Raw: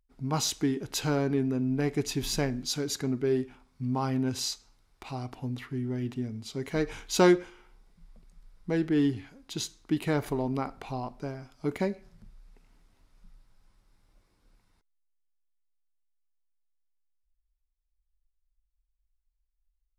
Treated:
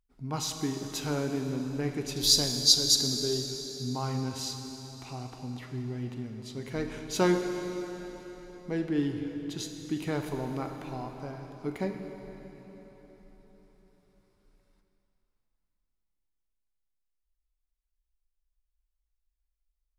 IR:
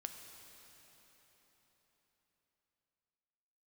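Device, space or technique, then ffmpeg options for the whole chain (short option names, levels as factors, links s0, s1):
cathedral: -filter_complex "[0:a]asettb=1/sr,asplit=3[s0][s1][s2];[s0]atrim=end=2.164[s3];[s1]atrim=start=2.16:end=3.45,asetpts=PTS-STARTPTS,afade=t=in:d=0.004:c=qsin,afade=t=out:st=1.286:d=0.004:c=qsin,highshelf=f=3100:t=q:w=3:g=11[s4];[s2]atrim=start=3.446[s5];[s3][s4]acrossfade=d=0.004:c1=hsin:c2=qsin[s6];[s6][s5]acrossfade=d=0.004:c1=qsin:c2=hsin[s7];[1:a]atrim=start_sample=2205[s8];[s7][s8]afir=irnorm=-1:irlink=0"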